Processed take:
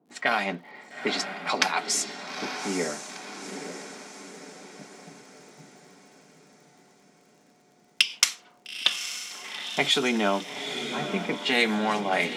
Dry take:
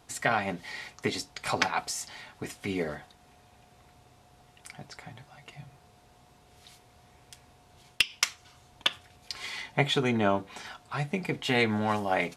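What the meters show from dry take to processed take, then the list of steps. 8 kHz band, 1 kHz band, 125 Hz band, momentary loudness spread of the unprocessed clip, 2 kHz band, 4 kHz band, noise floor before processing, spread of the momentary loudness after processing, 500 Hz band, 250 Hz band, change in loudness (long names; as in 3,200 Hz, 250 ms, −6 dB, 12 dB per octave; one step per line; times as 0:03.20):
+7.5 dB, +2.0 dB, −6.5 dB, 20 LU, +3.5 dB, +6.0 dB, −59 dBFS, 20 LU, +1.5 dB, +1.5 dB, +3.0 dB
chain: Butterworth high-pass 170 Hz 48 dB per octave
high-shelf EQ 2,600 Hz +11 dB
low-pass that shuts in the quiet parts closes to 310 Hz, open at −20 dBFS
in parallel at −2.5 dB: brickwall limiter −20.5 dBFS, peak gain reduction 20 dB
on the sum: surface crackle 58 per second −47 dBFS
on a send: feedback delay with all-pass diffusion 886 ms, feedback 50%, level −8 dB
on the sum: level −2.5 dB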